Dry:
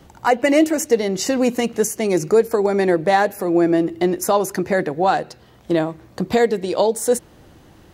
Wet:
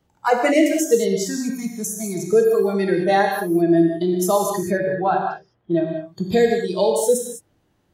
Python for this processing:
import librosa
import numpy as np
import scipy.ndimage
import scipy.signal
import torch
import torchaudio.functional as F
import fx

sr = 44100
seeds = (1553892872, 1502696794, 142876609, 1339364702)

y = fx.noise_reduce_blind(x, sr, reduce_db=18)
y = fx.fixed_phaser(y, sr, hz=1200.0, stages=4, at=(1.18, 2.33))
y = fx.lowpass(y, sr, hz=2000.0, slope=12, at=(4.72, 5.87), fade=0.02)
y = fx.rev_gated(y, sr, seeds[0], gate_ms=230, shape='flat', drr_db=1.0)
y = y * librosa.db_to_amplitude(-2.0)